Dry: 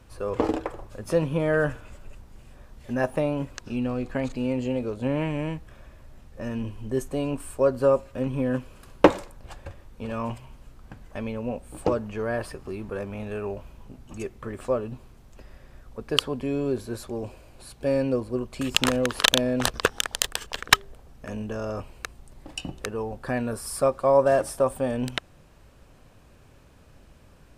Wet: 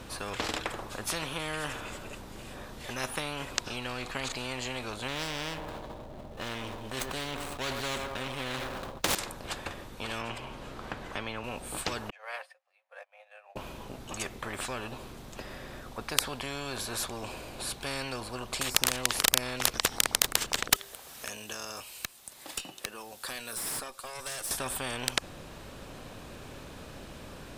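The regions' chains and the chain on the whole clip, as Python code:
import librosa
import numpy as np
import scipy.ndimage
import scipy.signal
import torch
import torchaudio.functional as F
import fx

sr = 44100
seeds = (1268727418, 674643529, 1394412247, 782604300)

y = fx.chain(x, sr, fx.median_filter(points=25),
    fx.echo_banded(ms=106, feedback_pct=77, hz=710.0, wet_db=-14.5),
    fx.sustainer(db_per_s=46.0), at=(5.08, 9.15))
y = fx.chain(y, sr, fx.lowpass(hz=3100.0, slope=6),
    fx.band_squash(depth_pct=40), at=(10.21, 11.44))
y = fx.chain(y, sr, fx.cheby_ripple_highpass(hz=520.0, ripple_db=9),
    fx.upward_expand(threshold_db=-56.0, expansion=2.5), at=(12.1, 13.56))
y = fx.chain(y, sr, fx.differentiator(),
    fx.tube_stage(drive_db=36.0, bias=0.4),
    fx.band_squash(depth_pct=70), at=(20.76, 24.51))
y = fx.peak_eq(y, sr, hz=3700.0, db=4.5, octaves=0.44)
y = fx.spectral_comp(y, sr, ratio=4.0)
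y = y * 10.0 ** (-2.5 / 20.0)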